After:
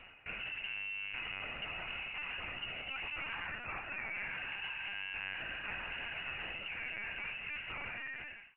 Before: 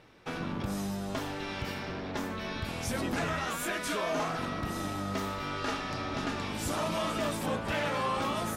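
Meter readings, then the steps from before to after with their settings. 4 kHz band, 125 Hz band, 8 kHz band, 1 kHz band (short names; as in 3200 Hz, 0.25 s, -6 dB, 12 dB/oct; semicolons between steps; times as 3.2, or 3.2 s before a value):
-4.0 dB, -19.0 dB, under -40 dB, -14.5 dB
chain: ending faded out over 2.72 s; reverse; compressor 6:1, threshold -43 dBFS, peak gain reduction 14 dB; reverse; inverted band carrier 2900 Hz; LPC vocoder at 8 kHz pitch kept; gain +3.5 dB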